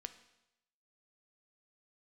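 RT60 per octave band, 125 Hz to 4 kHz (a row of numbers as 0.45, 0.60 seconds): 0.85, 0.80, 0.90, 0.85, 0.85, 0.85 seconds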